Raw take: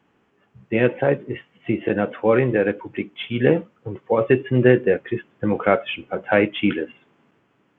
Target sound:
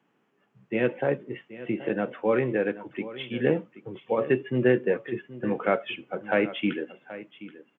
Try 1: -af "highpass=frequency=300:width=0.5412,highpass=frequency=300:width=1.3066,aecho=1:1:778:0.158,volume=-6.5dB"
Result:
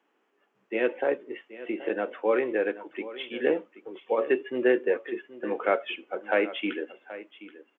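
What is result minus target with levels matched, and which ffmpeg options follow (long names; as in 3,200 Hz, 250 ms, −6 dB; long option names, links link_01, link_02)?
125 Hz band −20.0 dB
-af "highpass=frequency=130:width=0.5412,highpass=frequency=130:width=1.3066,aecho=1:1:778:0.158,volume=-6.5dB"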